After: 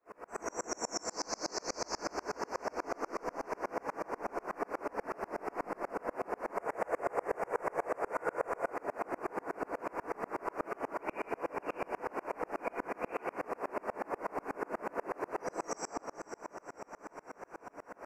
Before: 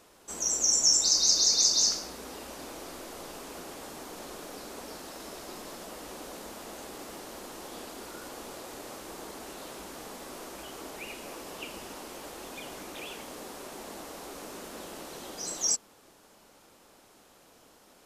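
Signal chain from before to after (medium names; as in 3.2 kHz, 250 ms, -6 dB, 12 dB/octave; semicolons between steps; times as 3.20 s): Butterworth band-stop 3.5 kHz, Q 1.1; three-band isolator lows -13 dB, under 340 Hz, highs -24 dB, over 2.7 kHz; reverberation RT60 1.3 s, pre-delay 52 ms, DRR -11 dB; compression 4:1, threshold -37 dBFS, peak gain reduction 7.5 dB; 6.57–8.70 s: ten-band graphic EQ 125 Hz +9 dB, 250 Hz -10 dB, 500 Hz +8 dB, 2 kHz +4 dB, 4 kHz -5 dB, 8 kHz +7 dB; echo that smears into a reverb 477 ms, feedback 62%, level -12 dB; sawtooth tremolo in dB swelling 8.2 Hz, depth 34 dB; trim +9 dB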